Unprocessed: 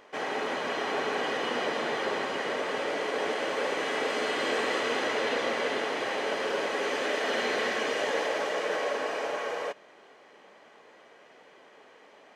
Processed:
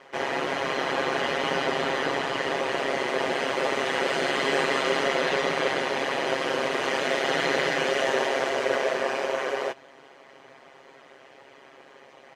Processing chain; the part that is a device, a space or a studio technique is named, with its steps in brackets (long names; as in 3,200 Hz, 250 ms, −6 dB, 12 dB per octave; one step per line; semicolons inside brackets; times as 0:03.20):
ring-modulated robot voice (ring modulation 68 Hz; comb filter 7.4 ms)
level +5.5 dB